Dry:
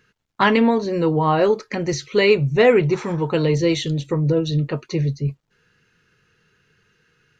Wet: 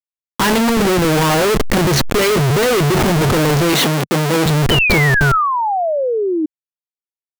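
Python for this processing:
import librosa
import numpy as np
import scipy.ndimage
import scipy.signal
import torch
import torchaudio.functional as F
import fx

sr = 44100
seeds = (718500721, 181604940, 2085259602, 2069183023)

y = fx.level_steps(x, sr, step_db=15, at=(0.62, 1.05))
y = fx.schmitt(y, sr, flips_db=-31.0)
y = fx.highpass(y, sr, hz=160.0, slope=24, at=(3.73, 4.46))
y = fx.spec_paint(y, sr, seeds[0], shape='fall', start_s=4.7, length_s=1.76, low_hz=300.0, high_hz=3100.0, level_db=-24.0)
y = fx.sustainer(y, sr, db_per_s=25.0)
y = y * 10.0 ** (7.0 / 20.0)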